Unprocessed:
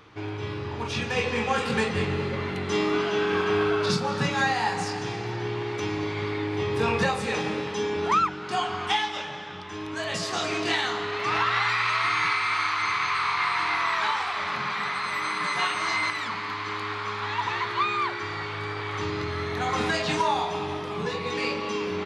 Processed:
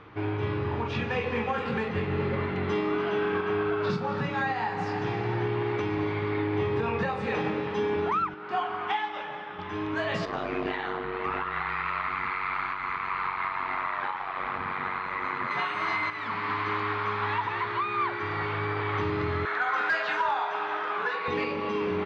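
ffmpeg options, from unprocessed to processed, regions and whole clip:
-filter_complex "[0:a]asettb=1/sr,asplit=3[s0][s1][s2];[s0]atrim=end=8.344[s3];[s1]atrim=start=8.34:end=9.59,asetpts=PTS-STARTPTS,afade=t=in:d=0.004:c=qsin,afade=t=out:st=1.246:d=0.004:c=qsin,highpass=f=500:p=1,highshelf=f=2700:g=-8.5[s4];[s2]atrim=start=9.586[s5];[s3][s4]acrossfade=d=0.004:c1=hsin:c2=qsin[s6];[s6][s5]acrossfade=d=0.004:c1=qsin:c2=hsin,asettb=1/sr,asplit=3[s7][s8][s9];[s7]atrim=end=10.254[s10];[s8]atrim=start=10.25:end=15.51,asetpts=PTS-STARTPTS,afade=t=in:d=0.004:c=qsin,afade=t=out:st=5.256:d=0.004:c=qsin,aemphasis=mode=reproduction:type=75kf,aeval=exprs='val(0)*sin(2*PI*47*n/s)':c=same[s11];[s9]atrim=start=15.506[s12];[s10][s11]acrossfade=d=0.004:c1=hsin:c2=qsin[s13];[s13][s12]acrossfade=d=0.004:c1=qsin:c2=hsin,asettb=1/sr,asplit=3[s14][s15][s16];[s14]atrim=end=19.454[s17];[s15]atrim=start=19.45:end=21.28,asetpts=PTS-STARTPTS,afade=t=in:d=0.004:c=qsin,afade=t=out:st=1.826:d=0.004:c=qsin,highpass=640,equalizer=f=1500:t=o:w=0.37:g=13,aeval=exprs='0.15*(abs(mod(val(0)/0.15+3,4)-2)-1)':c=same[s18];[s16]atrim=start=21.276[s19];[s17][s18]acrossfade=d=0.004:c1=hsin:c2=qsin[s20];[s20][s19]acrossfade=d=0.004:c1=qsin:c2=hsin,lowpass=2300,alimiter=limit=0.075:level=0:latency=1:release=412,volume=1.5"

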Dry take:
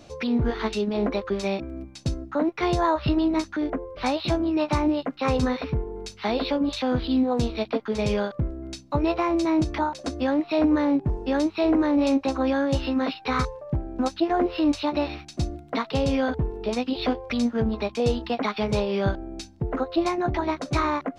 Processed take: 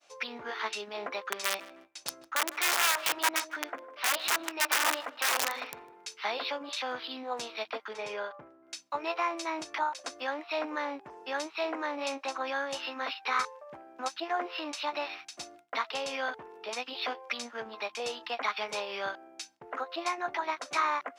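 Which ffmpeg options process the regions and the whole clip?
-filter_complex "[0:a]asettb=1/sr,asplit=3[s0][s1][s2];[s0]atrim=end=1.324[s3];[s1]atrim=start=1.32:end=6.21,asetpts=PTS-STARTPTS,afade=t=in:d=0.004:c=qsin,afade=t=out:st=4.886:d=0.004:c=qsin,bandreject=f=62.95:t=h:w=4,bandreject=f=125.9:t=h:w=4,bandreject=f=188.85:t=h:w=4,bandreject=f=251.8:t=h:w=4,bandreject=f=314.75:t=h:w=4,bandreject=f=377.7:t=h:w=4,bandreject=f=440.65:t=h:w=4,bandreject=f=503.6:t=h:w=4,bandreject=f=566.55:t=h:w=4,bandreject=f=629.5:t=h:w=4,aeval=exprs='(mod(7.5*val(0)+1,2)-1)/7.5':c=same,asplit=2[s4][s5];[s5]adelay=154,lowpass=f=2300:p=1,volume=0.15,asplit=2[s6][s7];[s7]adelay=154,lowpass=f=2300:p=1,volume=0.38,asplit=2[s8][s9];[s9]adelay=154,lowpass=f=2300:p=1,volume=0.38[s10];[s4][s6][s8][s10]amix=inputs=4:normalize=0,atrim=end_sample=215649[s11];[s2]atrim=start=6.206[s12];[s3][s11]acrossfade=d=0.004:c1=hsin:c2=qsin[s13];[s13][s12]acrossfade=d=0.004:c1=qsin:c2=hsin,asettb=1/sr,asplit=3[s14][s15][s16];[s14]atrim=end=7.934[s17];[s15]atrim=start=7.93:end=8.68,asetpts=PTS-STARTPTS,afade=t=in:d=0.004:c=qsin,afade=t=out:st=0.746:d=0.004:c=qsin,highshelf=f=2600:g=-12,aecho=1:1:6.9:0.38,atrim=end_sample=33075,bandreject=f=116.1:t=h:w=4,bandreject=f=232.2:t=h:w=4,bandreject=f=348.3:t=h:w=4,bandreject=f=464.4:t=h:w=4,bandreject=f=580.5:t=h:w=4,bandreject=f=696.6:t=h:w=4,bandreject=f=812.7:t=h:w=4,bandreject=f=928.8:t=h:w=4,bandreject=f=1044.9:t=h:w=4,bandreject=f=1161:t=h:w=4,bandreject=f=1277.1:t=h:w=4,bandreject=f=1393.2:t=h:w=4[s18];[s16]atrim=start=8.676[s19];[s17][s18]acrossfade=d=0.004:c1=hsin:c2=qsin[s20];[s20][s19]acrossfade=d=0.004:c1=qsin:c2=hsin,highpass=990,agate=range=0.0224:threshold=0.00316:ratio=3:detection=peak,equalizer=f=4100:t=o:w=0.41:g=-4.5"

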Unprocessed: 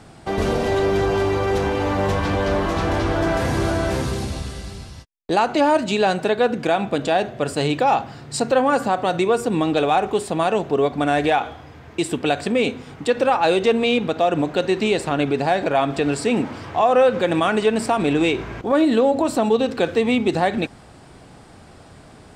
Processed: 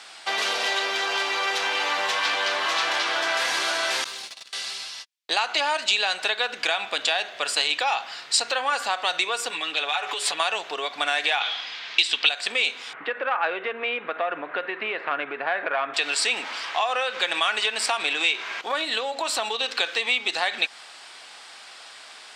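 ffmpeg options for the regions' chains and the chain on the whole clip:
-filter_complex "[0:a]asettb=1/sr,asplit=3[s0][s1][s2];[s0]atrim=end=4.044[s3];[s1]atrim=start=4.04:end=4.53,asetpts=PTS-STARTPTS,afade=t=in:d=0.004:c=qsin,afade=t=out:st=0.486:d=0.004:c=qsin,agate=range=0.0631:threshold=0.0501:ratio=16:release=100:detection=peak,acompressor=threshold=0.0224:ratio=3:attack=3.2:release=140:knee=1:detection=peak,acrusher=bits=8:mode=log:mix=0:aa=0.000001[s4];[s2]atrim=start=4.526[s5];[s3][s4]acrossfade=d=0.004:c1=hsin:c2=qsin[s6];[s6][s5]acrossfade=d=0.004:c1=qsin:c2=hsin,asettb=1/sr,asplit=3[s7][s8][s9];[s7]atrim=end=9.504[s10];[s8]atrim=start=9.5:end=10.4,asetpts=PTS-STARTPTS,afade=t=in:d=0.004:c=qsin,afade=t=out:st=0.896:d=0.004:c=qsin,equalizer=f=2000:w=0.56:g=4,aecho=1:1:6.9:0.98,atrim=end_sample=39690,acompressor=threshold=0.0708:ratio=6:attack=3.2:release=140:knee=1:detection=peak[s11];[s9]atrim=start=10.396[s12];[s10][s11]acrossfade=d=0.004:c1=hsin:c2=qsin[s13];[s13][s12]acrossfade=d=0.004:c1=qsin:c2=hsin,asettb=1/sr,asplit=3[s14][s15][s16];[s14]atrim=end=11.404[s17];[s15]atrim=start=11.4:end=12.29,asetpts=PTS-STARTPTS,afade=t=in:d=0.004:c=qsin,afade=t=out:st=0.886:d=0.004:c=qsin,lowpass=6100,equalizer=f=3900:t=o:w=1.8:g=11.5,aeval=exprs='val(0)+0.0126*(sin(2*PI*60*n/s)+sin(2*PI*2*60*n/s)/2+sin(2*PI*3*60*n/s)/3+sin(2*PI*4*60*n/s)/4+sin(2*PI*5*60*n/s)/5)':c=same[s18];[s16]atrim=start=12.286[s19];[s17][s18]acrossfade=d=0.004:c1=hsin:c2=qsin[s20];[s20][s19]acrossfade=d=0.004:c1=qsin:c2=hsin,asettb=1/sr,asplit=3[s21][s22][s23];[s21]atrim=end=12.934[s24];[s22]atrim=start=12.93:end=15.94,asetpts=PTS-STARTPTS,afade=t=in:d=0.004:c=qsin,afade=t=out:st=3.006:d=0.004:c=qsin,lowpass=f=1800:w=0.5412,lowpass=f=1800:w=1.3066,equalizer=f=840:w=2.7:g=-6.5,acontrast=44[s25];[s23]atrim=start=15.936[s26];[s24][s25]acrossfade=d=0.004:c1=hsin:c2=qsin[s27];[s27][s26]acrossfade=d=0.004:c1=qsin:c2=hsin,equalizer=f=3700:w=0.49:g=13,acompressor=threshold=0.141:ratio=6,highpass=900"

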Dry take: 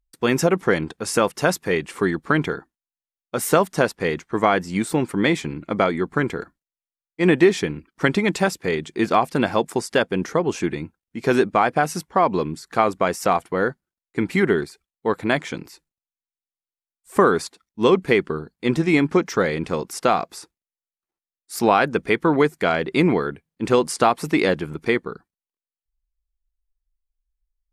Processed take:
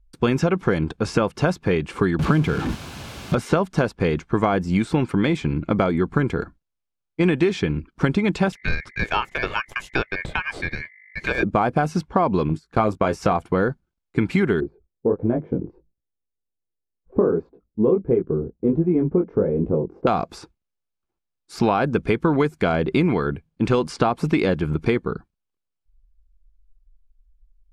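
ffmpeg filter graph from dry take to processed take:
-filter_complex "[0:a]asettb=1/sr,asplit=3[s0][s1][s2];[s0]atrim=end=2.194[s3];[s1]atrim=start=2.19:end=3.35,asetpts=PTS-STARTPTS,afade=t=in:d=0.004:c=qsin,afade=t=out:st=1.156:d=0.004:c=qsin,aeval=exprs='val(0)+0.5*0.0631*sgn(val(0))':c=same,highpass=92,bass=f=250:g=6,treble=f=4000:g=-2[s4];[s2]atrim=start=3.346[s5];[s3][s4]acrossfade=d=0.004:c1=hsin:c2=qsin[s6];[s6][s5]acrossfade=d=0.004:c1=qsin:c2=hsin,asettb=1/sr,asplit=3[s7][s8][s9];[s7]atrim=end=8.524[s10];[s8]atrim=start=8.52:end=11.43,asetpts=PTS-STARTPTS,afade=t=in:d=0.004:c=qsin,afade=t=out:st=2.906:d=0.004:c=qsin,agate=range=0.0224:threshold=0.0178:ratio=3:release=100:detection=peak,aeval=exprs='val(0)+0.00562*(sin(2*PI*50*n/s)+sin(2*PI*2*50*n/s)/2+sin(2*PI*3*50*n/s)/3+sin(2*PI*4*50*n/s)/4+sin(2*PI*5*50*n/s)/5)':c=same,aeval=exprs='val(0)*sin(2*PI*2000*n/s)':c=same[s11];[s9]atrim=start=11.426[s12];[s10][s11]acrossfade=d=0.004:c1=hsin:c2=qsin[s13];[s13][s12]acrossfade=d=0.004:c1=qsin:c2=hsin,asettb=1/sr,asplit=3[s14][s15][s16];[s14]atrim=end=12.494[s17];[s15]atrim=start=12.49:end=13.32,asetpts=PTS-STARTPTS,afade=t=in:d=0.004:c=qsin,afade=t=out:st=0.826:d=0.004:c=qsin,agate=range=0.141:threshold=0.0158:ratio=16:release=100:detection=peak,asplit=2[s18][s19];[s19]adelay=19,volume=0.355[s20];[s18][s20]amix=inputs=2:normalize=0,atrim=end_sample=36603[s21];[s16]atrim=start=13.316[s22];[s17][s21]acrossfade=d=0.004:c1=hsin:c2=qsin[s23];[s23][s22]acrossfade=d=0.004:c1=qsin:c2=hsin,asettb=1/sr,asplit=3[s24][s25][s26];[s24]atrim=end=14.604[s27];[s25]atrim=start=14.6:end=20.07,asetpts=PTS-STARTPTS,afade=t=in:d=0.004:c=qsin,afade=t=out:st=5.466:d=0.004:c=qsin,flanger=delay=17:depth=6.3:speed=1.4,lowpass=f=470:t=q:w=1.9[s28];[s26]atrim=start=20.066[s29];[s27][s28]acrossfade=d=0.004:c1=hsin:c2=qsin[s30];[s30][s29]acrossfade=d=0.004:c1=qsin:c2=hsin,aemphasis=mode=reproduction:type=bsi,bandreject=f=1900:w=7.4,acrossover=split=1100|6000[s31][s32][s33];[s31]acompressor=threshold=0.0708:ratio=4[s34];[s32]acompressor=threshold=0.0224:ratio=4[s35];[s33]acompressor=threshold=0.00178:ratio=4[s36];[s34][s35][s36]amix=inputs=3:normalize=0,volume=1.78"

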